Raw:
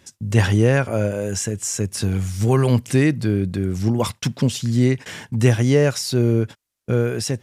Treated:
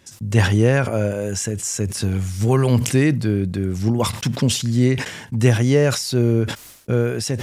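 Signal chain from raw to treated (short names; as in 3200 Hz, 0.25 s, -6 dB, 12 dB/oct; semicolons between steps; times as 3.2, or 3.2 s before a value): sustainer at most 87 dB/s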